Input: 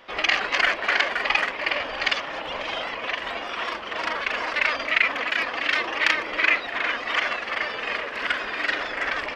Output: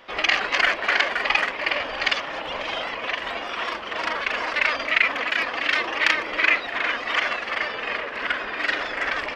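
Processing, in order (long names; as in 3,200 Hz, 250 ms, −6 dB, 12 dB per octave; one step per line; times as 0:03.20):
0:07.67–0:08.59: high-shelf EQ 7,700 Hz → 4,300 Hz −9.5 dB
level +1 dB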